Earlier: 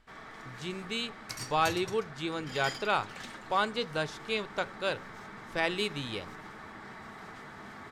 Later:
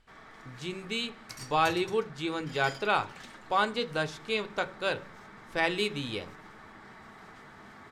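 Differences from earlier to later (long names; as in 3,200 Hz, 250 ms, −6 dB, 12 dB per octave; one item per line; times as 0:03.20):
speech: send +8.0 dB
background −4.0 dB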